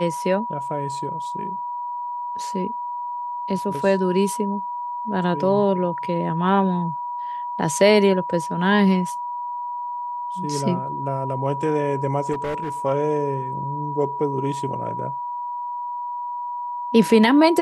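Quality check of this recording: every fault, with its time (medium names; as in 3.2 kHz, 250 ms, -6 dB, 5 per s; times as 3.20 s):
whine 970 Hz -26 dBFS
12.32–12.70 s: clipped -22.5 dBFS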